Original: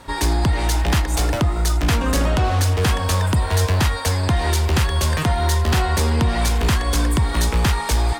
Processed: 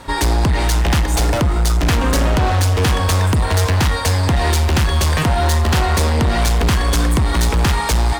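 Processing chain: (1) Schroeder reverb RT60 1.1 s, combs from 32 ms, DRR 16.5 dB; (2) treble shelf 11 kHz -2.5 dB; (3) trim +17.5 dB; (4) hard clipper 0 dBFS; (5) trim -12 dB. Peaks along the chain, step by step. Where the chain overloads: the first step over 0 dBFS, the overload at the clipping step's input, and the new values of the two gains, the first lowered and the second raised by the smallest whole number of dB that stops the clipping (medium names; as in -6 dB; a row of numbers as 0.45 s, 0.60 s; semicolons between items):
-9.5 dBFS, -9.5 dBFS, +8.0 dBFS, 0.0 dBFS, -12.0 dBFS; step 3, 8.0 dB; step 3 +9.5 dB, step 5 -4 dB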